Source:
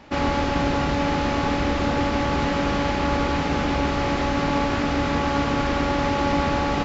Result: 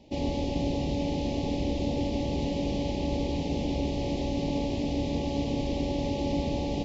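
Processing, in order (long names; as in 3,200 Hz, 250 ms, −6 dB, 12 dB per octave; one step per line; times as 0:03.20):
Butterworth band-reject 1,400 Hz, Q 0.59
high-shelf EQ 6,000 Hz −5 dB
level −5 dB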